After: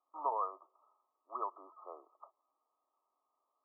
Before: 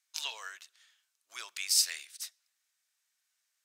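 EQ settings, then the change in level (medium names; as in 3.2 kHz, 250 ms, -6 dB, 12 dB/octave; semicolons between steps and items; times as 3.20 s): brick-wall FIR band-pass 240–1300 Hz; +15.0 dB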